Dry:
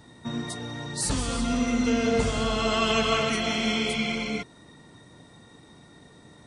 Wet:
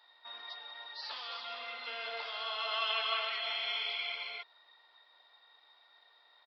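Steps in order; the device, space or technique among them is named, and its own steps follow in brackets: musical greeting card (resampled via 11.025 kHz; high-pass 730 Hz 24 dB/octave; peaking EQ 3.5 kHz +5 dB 0.48 oct); trim -8.5 dB

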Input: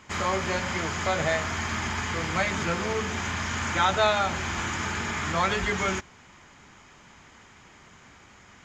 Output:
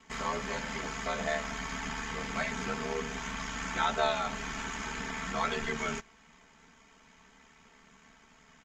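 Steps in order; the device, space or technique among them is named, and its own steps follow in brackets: ring-modulated robot voice (ring modulator 37 Hz; comb 4.5 ms, depth 83%); trim -6.5 dB

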